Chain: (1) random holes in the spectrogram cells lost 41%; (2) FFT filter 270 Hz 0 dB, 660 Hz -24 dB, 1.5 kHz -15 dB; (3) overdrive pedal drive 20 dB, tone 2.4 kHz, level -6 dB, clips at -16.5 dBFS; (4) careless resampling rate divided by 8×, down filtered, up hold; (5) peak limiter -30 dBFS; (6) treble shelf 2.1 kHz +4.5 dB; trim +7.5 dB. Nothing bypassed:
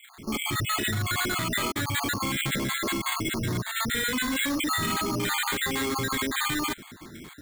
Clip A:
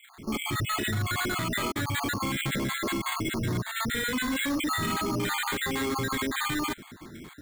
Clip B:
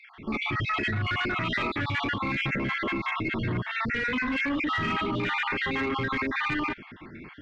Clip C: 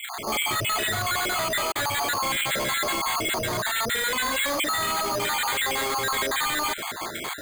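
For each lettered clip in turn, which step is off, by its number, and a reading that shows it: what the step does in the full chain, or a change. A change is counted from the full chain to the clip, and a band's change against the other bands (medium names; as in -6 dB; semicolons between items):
6, 8 kHz band -3.5 dB; 4, 4 kHz band -5.5 dB; 2, 250 Hz band -10.0 dB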